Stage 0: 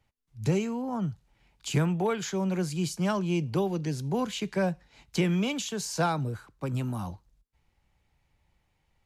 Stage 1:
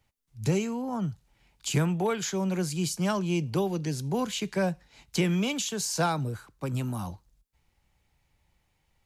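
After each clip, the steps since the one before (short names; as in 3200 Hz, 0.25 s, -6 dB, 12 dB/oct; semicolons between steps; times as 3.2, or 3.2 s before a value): high shelf 4700 Hz +6.5 dB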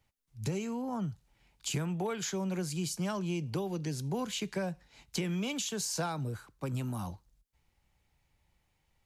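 compressor, threshold -27 dBFS, peak gain reduction 7 dB; gain -3 dB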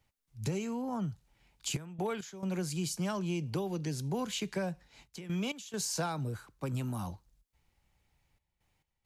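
step gate "xxxxxxxx.x.xxxx" 68 bpm -12 dB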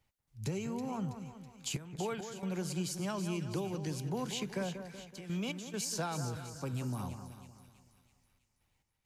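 split-band echo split 1800 Hz, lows 0.188 s, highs 0.326 s, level -9 dB; gain -2.5 dB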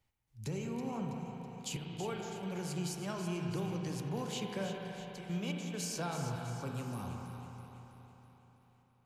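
reverb RT60 4.1 s, pre-delay 34 ms, DRR 1.5 dB; gain -3 dB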